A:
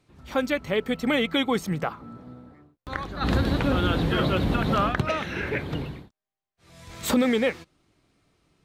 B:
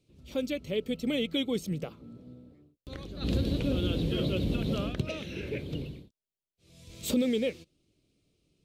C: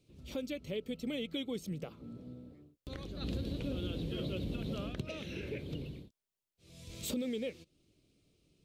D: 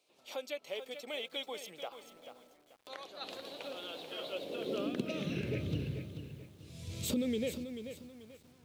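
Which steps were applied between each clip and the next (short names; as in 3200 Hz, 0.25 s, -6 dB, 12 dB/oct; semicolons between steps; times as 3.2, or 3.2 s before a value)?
band shelf 1200 Hz -15.5 dB; gain -5 dB
compressor 2:1, threshold -43 dBFS, peak gain reduction 11 dB; gain +1 dB
high-pass sweep 770 Hz -> 93 Hz, 4.28–5.6; lo-fi delay 0.437 s, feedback 35%, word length 10-bit, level -9 dB; gain +2 dB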